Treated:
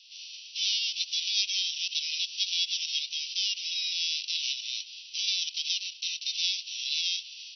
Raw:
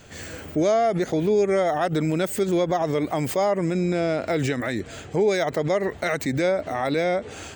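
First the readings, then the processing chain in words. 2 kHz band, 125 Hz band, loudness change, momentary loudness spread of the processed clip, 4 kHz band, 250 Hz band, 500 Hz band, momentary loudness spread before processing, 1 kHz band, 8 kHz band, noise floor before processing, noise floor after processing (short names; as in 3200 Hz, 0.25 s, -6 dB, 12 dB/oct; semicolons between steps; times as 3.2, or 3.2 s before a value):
-7.0 dB, under -40 dB, -5.0 dB, 6 LU, +13.0 dB, under -40 dB, under -40 dB, 6 LU, under -40 dB, +4.5 dB, -40 dBFS, -47 dBFS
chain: spectral whitening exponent 0.3; steep high-pass 2600 Hz 96 dB/oct; MP2 48 kbps 32000 Hz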